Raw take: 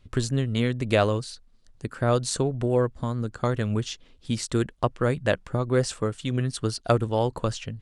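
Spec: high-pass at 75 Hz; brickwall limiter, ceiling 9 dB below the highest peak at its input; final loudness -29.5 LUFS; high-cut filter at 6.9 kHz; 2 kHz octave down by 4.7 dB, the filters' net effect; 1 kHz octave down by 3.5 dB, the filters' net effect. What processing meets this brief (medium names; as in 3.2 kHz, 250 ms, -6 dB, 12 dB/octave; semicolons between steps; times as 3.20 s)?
high-pass 75 Hz; low-pass 6.9 kHz; peaking EQ 1 kHz -3.5 dB; peaking EQ 2 kHz -5 dB; trim +0.5 dB; peak limiter -18 dBFS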